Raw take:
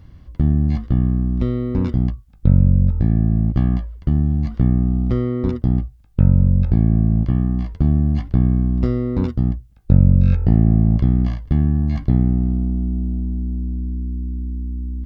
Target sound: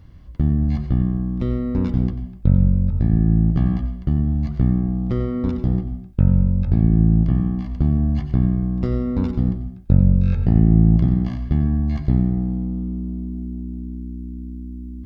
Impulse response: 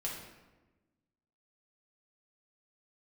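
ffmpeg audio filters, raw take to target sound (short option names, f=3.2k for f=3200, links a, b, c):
-filter_complex "[0:a]asplit=2[a][b];[1:a]atrim=start_sample=2205,afade=t=out:st=0.28:d=0.01,atrim=end_sample=12789,adelay=91[c];[b][c]afir=irnorm=-1:irlink=0,volume=-10dB[d];[a][d]amix=inputs=2:normalize=0,volume=-2dB"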